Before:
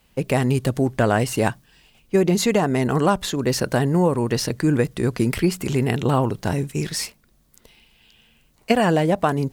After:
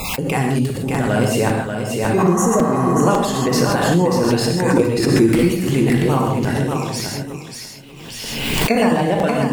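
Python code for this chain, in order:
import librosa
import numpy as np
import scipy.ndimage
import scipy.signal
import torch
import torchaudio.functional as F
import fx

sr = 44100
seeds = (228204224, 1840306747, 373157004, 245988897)

y = fx.spec_dropout(x, sr, seeds[0], share_pct=22)
y = fx.peak_eq(y, sr, hz=330.0, db=9.0, octaves=0.32, at=(4.62, 5.28))
y = fx.hum_notches(y, sr, base_hz=50, count=4)
y = fx.peak_eq(y, sr, hz=1000.0, db=-7.5, octaves=2.9, at=(0.63, 1.09))
y = fx.spec_repair(y, sr, seeds[1], start_s=2.21, length_s=0.71, low_hz=680.0, high_hz=5500.0, source='after')
y = fx.echo_feedback(y, sr, ms=588, feedback_pct=16, wet_db=-6)
y = fx.rev_gated(y, sr, seeds[2], gate_ms=180, shape='flat', drr_db=0.0)
y = fx.buffer_crackle(y, sr, first_s=0.94, period_s=0.55, block=256, kind='repeat')
y = fx.pre_swell(y, sr, db_per_s=32.0)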